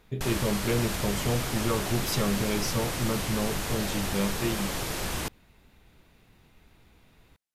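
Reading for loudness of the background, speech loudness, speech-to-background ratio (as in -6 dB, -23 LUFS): -31.5 LUFS, -30.5 LUFS, 1.0 dB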